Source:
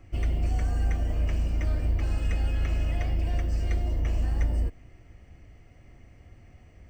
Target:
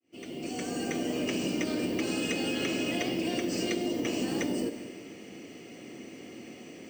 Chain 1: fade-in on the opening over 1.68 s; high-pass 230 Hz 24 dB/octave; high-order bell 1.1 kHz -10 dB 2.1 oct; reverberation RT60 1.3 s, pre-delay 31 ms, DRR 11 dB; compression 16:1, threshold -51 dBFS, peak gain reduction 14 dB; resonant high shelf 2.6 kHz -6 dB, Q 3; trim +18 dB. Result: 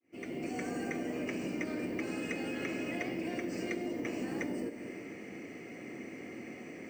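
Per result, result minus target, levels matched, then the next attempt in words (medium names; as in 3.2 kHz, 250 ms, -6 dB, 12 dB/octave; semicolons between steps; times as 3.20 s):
4 kHz band -7.0 dB; compression: peak gain reduction +6 dB
fade-in on the opening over 1.68 s; high-pass 230 Hz 24 dB/octave; high-order bell 1.1 kHz -10 dB 2.1 oct; reverberation RT60 1.3 s, pre-delay 31 ms, DRR 11 dB; compression 16:1, threshold -51 dBFS, peak gain reduction 14 dB; trim +18 dB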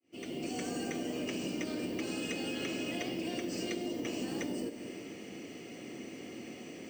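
compression: peak gain reduction +6 dB
fade-in on the opening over 1.68 s; high-pass 230 Hz 24 dB/octave; high-order bell 1.1 kHz -10 dB 2.1 oct; reverberation RT60 1.3 s, pre-delay 31 ms, DRR 11 dB; compression 16:1, threshold -44.5 dBFS, peak gain reduction 8 dB; trim +18 dB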